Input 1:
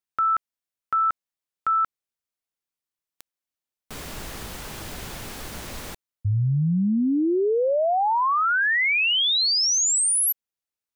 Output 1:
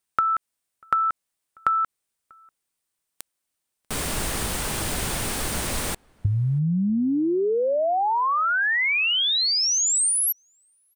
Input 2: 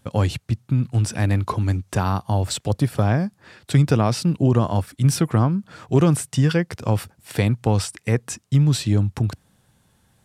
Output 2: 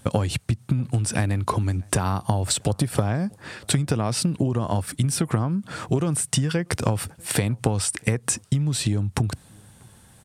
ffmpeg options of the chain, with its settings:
-filter_complex "[0:a]equalizer=f=8900:w=3.3:g=8.5,acompressor=threshold=0.0355:ratio=12:attack=21:release=195:knee=1:detection=peak,asplit=2[s0][s1];[s1]adelay=641.4,volume=0.0355,highshelf=f=4000:g=-14.4[s2];[s0][s2]amix=inputs=2:normalize=0,volume=2.51"

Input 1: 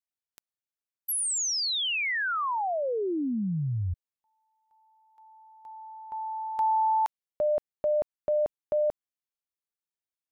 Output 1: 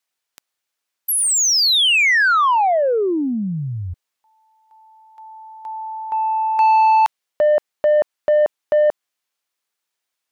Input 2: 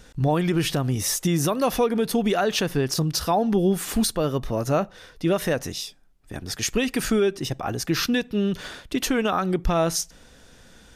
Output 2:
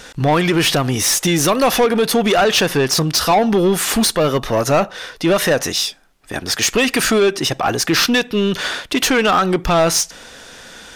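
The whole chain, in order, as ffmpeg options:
-filter_complex "[0:a]acontrast=32,asplit=2[s0][s1];[s1]highpass=f=720:p=1,volume=7.08,asoftclip=type=tanh:threshold=0.473[s2];[s0][s2]amix=inputs=2:normalize=0,lowpass=f=7000:p=1,volume=0.501"

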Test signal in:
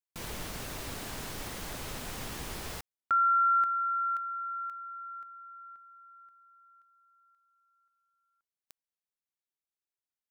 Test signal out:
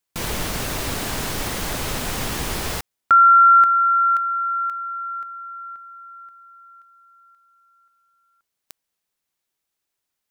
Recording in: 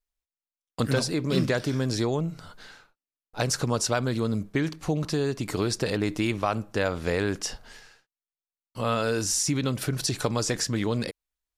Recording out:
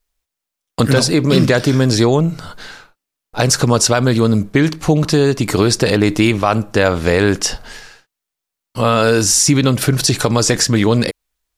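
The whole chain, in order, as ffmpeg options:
-af "alimiter=level_in=5.31:limit=0.891:release=50:level=0:latency=1,volume=0.891"

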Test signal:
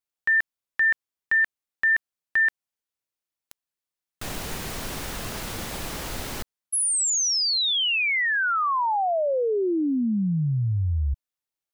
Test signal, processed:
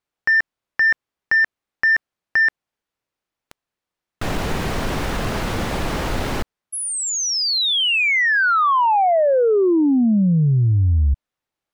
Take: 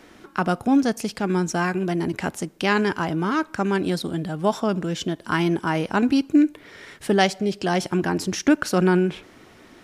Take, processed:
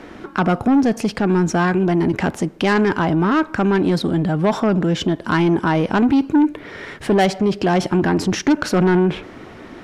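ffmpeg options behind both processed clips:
-filter_complex "[0:a]lowpass=f=1800:p=1,asplit=2[s0][s1];[s1]acompressor=threshold=0.0355:ratio=6:attack=1.9:release=35:knee=1:detection=peak,volume=1.26[s2];[s0][s2]amix=inputs=2:normalize=0,aeval=exprs='0.501*(cos(1*acos(clip(val(0)/0.501,-1,1)))-cos(1*PI/2))+0.0794*(cos(5*acos(clip(val(0)/0.501,-1,1)))-cos(5*PI/2))':c=same"

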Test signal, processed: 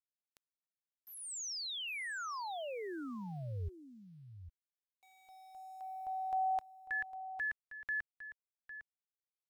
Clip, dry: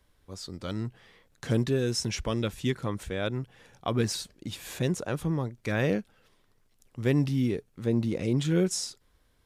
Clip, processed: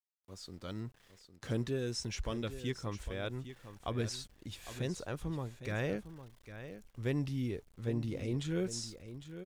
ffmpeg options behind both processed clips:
-filter_complex "[0:a]acrossover=split=9200[s0][s1];[s1]acompressor=threshold=0.002:ratio=4:attack=1:release=60[s2];[s0][s2]amix=inputs=2:normalize=0,asubboost=boost=4.5:cutoff=74,aeval=exprs='val(0)*gte(abs(val(0)),0.00237)':c=same,asplit=2[s3][s4];[s4]aecho=0:1:805:0.251[s5];[s3][s5]amix=inputs=2:normalize=0,volume=0.398"

